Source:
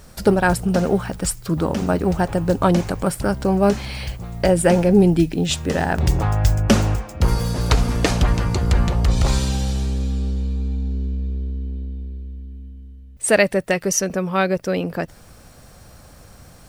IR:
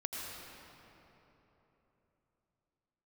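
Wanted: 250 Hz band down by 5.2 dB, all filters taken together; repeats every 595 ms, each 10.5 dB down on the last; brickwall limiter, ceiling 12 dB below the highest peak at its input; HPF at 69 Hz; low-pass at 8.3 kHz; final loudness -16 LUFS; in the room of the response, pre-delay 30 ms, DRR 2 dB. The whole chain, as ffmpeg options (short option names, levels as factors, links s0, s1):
-filter_complex "[0:a]highpass=69,lowpass=8300,equalizer=f=250:t=o:g=-8.5,alimiter=limit=0.211:level=0:latency=1,aecho=1:1:595|1190|1785:0.299|0.0896|0.0269,asplit=2[s0][s1];[1:a]atrim=start_sample=2205,adelay=30[s2];[s1][s2]afir=irnorm=-1:irlink=0,volume=0.631[s3];[s0][s3]amix=inputs=2:normalize=0,volume=2"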